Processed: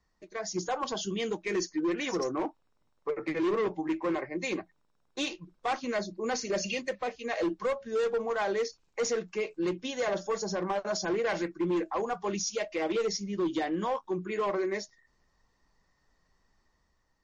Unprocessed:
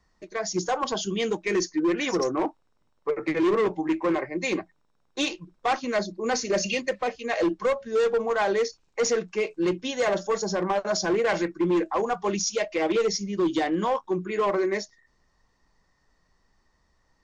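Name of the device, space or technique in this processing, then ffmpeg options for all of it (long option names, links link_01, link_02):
low-bitrate web radio: -filter_complex "[0:a]asettb=1/sr,asplit=3[link_01][link_02][link_03];[link_01]atrim=end=13.204[link_04];[link_02]atrim=start=13.2:end=13.81,asetpts=PTS-STARTPTS,afade=type=in:duration=0.004:curve=qsin,afade=type=out:start_time=0.606:duration=0.004:curve=qsin,highshelf=frequency=6600:gain=-5[link_05];[link_03]atrim=start=13.806[link_06];[link_04][link_05]acrossfade=duration=0.004:curve1=hsin:curve2=qsin[link_07];[link_07][link_06]acrossfade=duration=0.004:curve1=qsin:curve2=hsin,dynaudnorm=framelen=240:gausssize=5:maxgain=4dB,alimiter=limit=-17dB:level=0:latency=1:release=186,volume=-7dB" -ar 32000 -c:a libmp3lame -b:a 40k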